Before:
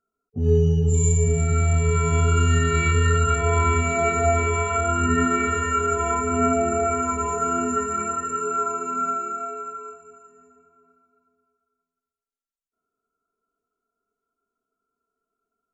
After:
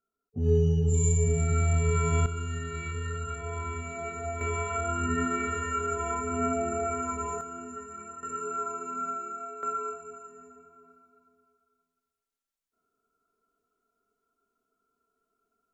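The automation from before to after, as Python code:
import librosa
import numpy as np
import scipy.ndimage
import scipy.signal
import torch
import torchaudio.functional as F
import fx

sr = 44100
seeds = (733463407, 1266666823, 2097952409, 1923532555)

y = fx.gain(x, sr, db=fx.steps((0.0, -5.0), (2.26, -15.0), (4.41, -8.0), (7.41, -17.0), (8.23, -8.5), (9.63, 3.0)))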